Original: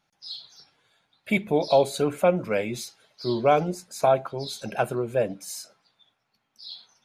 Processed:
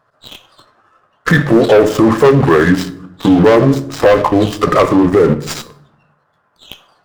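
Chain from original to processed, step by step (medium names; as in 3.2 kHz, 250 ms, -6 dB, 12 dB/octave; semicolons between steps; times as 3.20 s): rotating-head pitch shifter -4.5 st; high-pass 170 Hz 6 dB/octave; resonant high shelf 1.9 kHz -9.5 dB, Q 3; in parallel at -2 dB: level held to a coarse grid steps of 20 dB; on the sum: waveshaping leveller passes 3; compression 3:1, threshold -23 dBFS, peak gain reduction 11 dB; on a send at -11.5 dB: reverberation RT60 0.70 s, pre-delay 7 ms; on the sum: loudness maximiser +19 dB; sliding maximum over 3 samples; trim -1 dB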